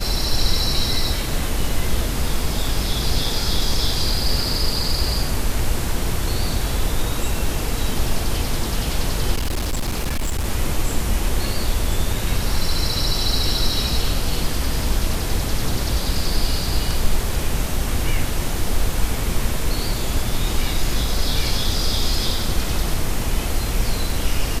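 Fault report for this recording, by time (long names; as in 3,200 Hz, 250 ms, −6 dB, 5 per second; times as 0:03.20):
0:09.35–0:10.46: clipping −18 dBFS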